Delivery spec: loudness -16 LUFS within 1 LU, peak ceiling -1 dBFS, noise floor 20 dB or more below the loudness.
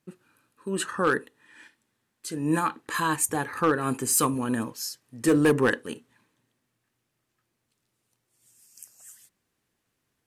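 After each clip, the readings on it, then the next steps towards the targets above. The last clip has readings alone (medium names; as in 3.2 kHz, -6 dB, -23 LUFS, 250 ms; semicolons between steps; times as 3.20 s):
clipped samples 0.3%; clipping level -14.5 dBFS; loudness -26.0 LUFS; peak level -14.5 dBFS; loudness target -16.0 LUFS
-> clip repair -14.5 dBFS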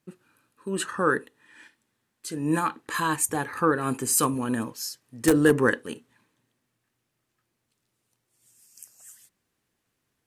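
clipped samples 0.0%; loudness -25.5 LUFS; peak level -5.5 dBFS; loudness target -16.0 LUFS
-> trim +9.5 dB; peak limiter -1 dBFS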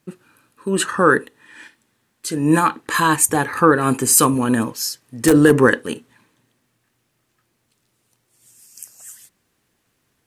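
loudness -16.5 LUFS; peak level -1.0 dBFS; noise floor -69 dBFS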